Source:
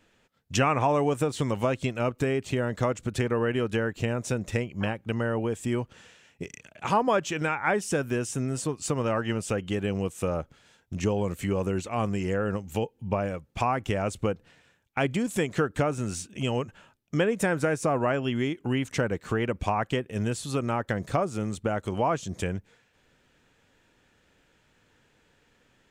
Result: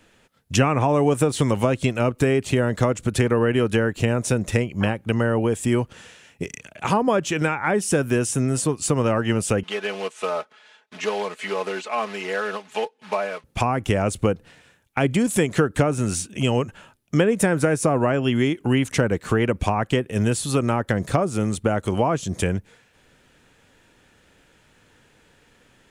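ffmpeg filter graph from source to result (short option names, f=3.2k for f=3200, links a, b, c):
-filter_complex "[0:a]asettb=1/sr,asplit=3[a][b][c];[a]atrim=end=9.634[d];[b]atrim=start=9.63:end=13.44,asetpts=PTS-STARTPTS,afade=t=in:d=0.004:c=qsin,afade=t=out:st=3.806:d=0.004:c=qsin,acrusher=bits=4:mode=log:mix=0:aa=0.000001,highpass=640,lowpass=3.8k,aecho=1:1:4.7:0.8,atrim=end_sample=168021[e];[c]atrim=start=13.436[f];[d][e]acrossfade=d=0.004:c1=hsin:c2=qsin[g];[g][f]acrossfade=d=0.004:c1=qsin:c2=hsin,equalizer=f=10k:w=3:g=8,acrossover=split=450[h][i];[i]acompressor=threshold=-30dB:ratio=2.5[j];[h][j]amix=inputs=2:normalize=0,volume=7.5dB"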